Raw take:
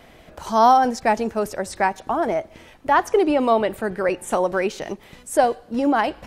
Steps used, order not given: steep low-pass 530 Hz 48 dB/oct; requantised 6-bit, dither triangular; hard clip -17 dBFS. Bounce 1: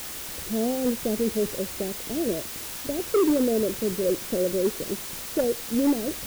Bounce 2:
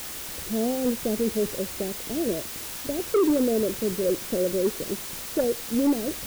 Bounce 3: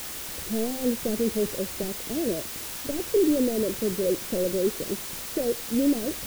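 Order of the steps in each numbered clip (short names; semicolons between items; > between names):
steep low-pass > hard clip > requantised; steep low-pass > requantised > hard clip; hard clip > steep low-pass > requantised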